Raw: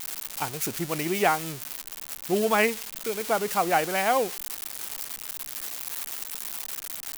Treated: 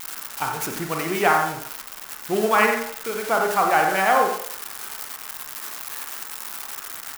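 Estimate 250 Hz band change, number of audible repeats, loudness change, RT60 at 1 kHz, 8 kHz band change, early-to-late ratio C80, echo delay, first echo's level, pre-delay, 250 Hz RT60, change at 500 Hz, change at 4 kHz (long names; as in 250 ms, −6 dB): +2.0 dB, 1, +4.5 dB, 0.65 s, +0.5 dB, 6.5 dB, 90 ms, −9.5 dB, 31 ms, 0.40 s, +3.0 dB, +1.5 dB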